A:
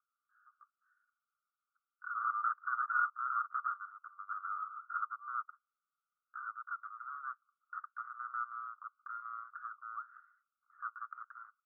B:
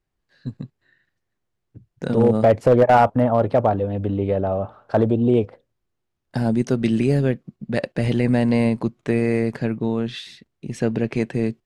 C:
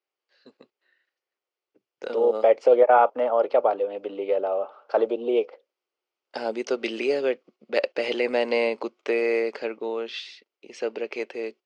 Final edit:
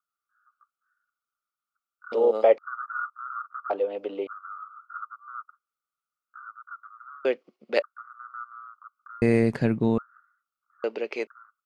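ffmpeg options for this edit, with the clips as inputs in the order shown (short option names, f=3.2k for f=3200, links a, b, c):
-filter_complex "[2:a]asplit=4[a][b][c][d];[0:a]asplit=6[e][f][g][h][i][j];[e]atrim=end=2.122[k];[a]atrim=start=2.118:end=2.582[l];[f]atrim=start=2.578:end=3.702[m];[b]atrim=start=3.698:end=4.272[n];[g]atrim=start=4.268:end=7.252[o];[c]atrim=start=7.248:end=7.822[p];[h]atrim=start=7.818:end=9.222[q];[1:a]atrim=start=9.218:end=9.982[r];[i]atrim=start=9.978:end=10.842[s];[d]atrim=start=10.838:end=11.272[t];[j]atrim=start=11.268[u];[k][l]acrossfade=d=0.004:c1=hsin:c2=hsin[v];[v][m]acrossfade=d=0.004:c1=hsin:c2=hsin[w];[w][n]acrossfade=d=0.004:c1=hsin:c2=hsin[x];[x][o]acrossfade=d=0.004:c1=hsin:c2=hsin[y];[y][p]acrossfade=d=0.004:c1=hsin:c2=hsin[z];[z][q]acrossfade=d=0.004:c1=hsin:c2=hsin[aa];[aa][r]acrossfade=d=0.004:c1=hsin:c2=hsin[ab];[ab][s]acrossfade=d=0.004:c1=hsin:c2=hsin[ac];[ac][t]acrossfade=d=0.004:c1=hsin:c2=hsin[ad];[ad][u]acrossfade=d=0.004:c1=hsin:c2=hsin"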